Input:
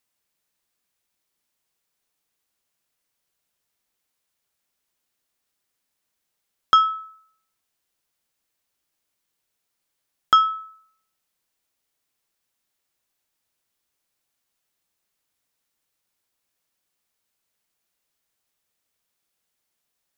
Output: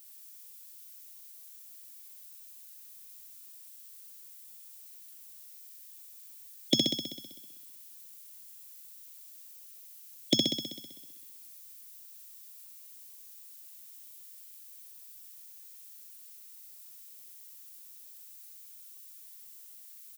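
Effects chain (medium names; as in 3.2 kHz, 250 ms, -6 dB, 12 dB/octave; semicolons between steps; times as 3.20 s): high-pass 62 Hz 6 dB/octave; spectral gate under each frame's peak -15 dB weak; elliptic band-stop 530–2300 Hz, stop band 40 dB; peaking EQ 130 Hz +9.5 dB 0.28 oct; comb 4.5 ms, depth 50%; frequency shift +99 Hz; added noise violet -61 dBFS; resonant low shelf 390 Hz +8.5 dB, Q 1.5; flutter echo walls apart 11 m, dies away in 1.1 s; trim +7.5 dB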